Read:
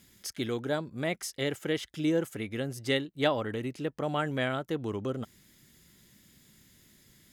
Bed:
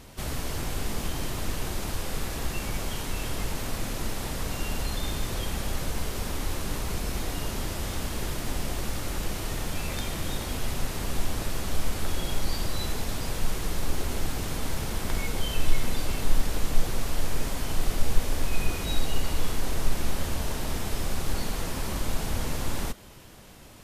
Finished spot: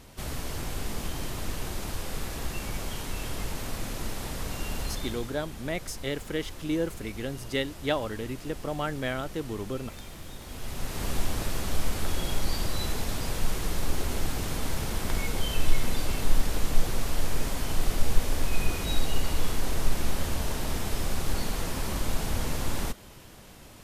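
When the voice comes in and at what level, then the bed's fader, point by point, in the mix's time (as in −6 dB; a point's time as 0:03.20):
4.65 s, −1.0 dB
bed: 0:04.91 −2.5 dB
0:05.39 −11.5 dB
0:10.38 −11.5 dB
0:11.05 0 dB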